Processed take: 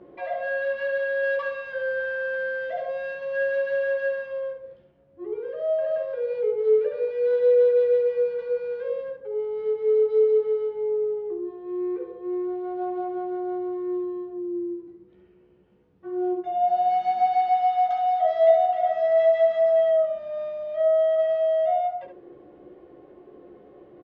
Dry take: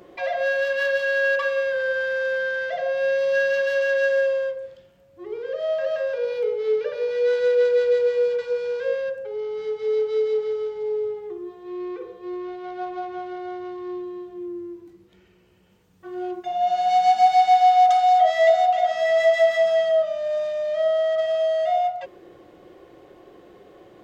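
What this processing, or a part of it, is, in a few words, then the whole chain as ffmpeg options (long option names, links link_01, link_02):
phone in a pocket: -filter_complex "[0:a]asettb=1/sr,asplit=3[link_01][link_02][link_03];[link_01]atrim=end=1.234[link_04];[link_02]atrim=start=1.23:end=3.15,asetpts=PTS-STARTPTS,afade=type=in:duration=0.004:curve=qsin,afade=type=out:start_time=1.916:duration=0.004:curve=qsin,aemphasis=mode=production:type=50kf[link_05];[link_03]atrim=start=3.146[link_06];[link_04][link_05]acrossfade=duration=0.004:curve1=hsin:curve2=qsin[link_07];[link_07][link_06]acrossfade=duration=0.004:curve1=qsin:curve2=hsin,lowpass=3600,equalizer=frequency=300:width_type=o:width=1.8:gain=5.5,highshelf=frequency=2200:gain=-11,aecho=1:1:14|69:0.562|0.398,volume=-5.5dB"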